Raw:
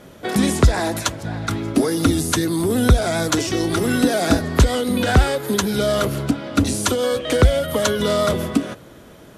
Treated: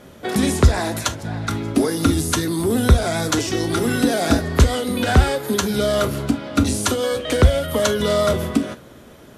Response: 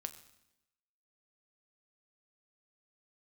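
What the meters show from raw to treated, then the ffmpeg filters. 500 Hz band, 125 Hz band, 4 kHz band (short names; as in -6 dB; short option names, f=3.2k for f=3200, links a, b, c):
-0.5 dB, +0.5 dB, -0.5 dB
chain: -filter_complex "[1:a]atrim=start_sample=2205,atrim=end_sample=3528[a];[0:a][a]afir=irnorm=-1:irlink=0,volume=2.5dB"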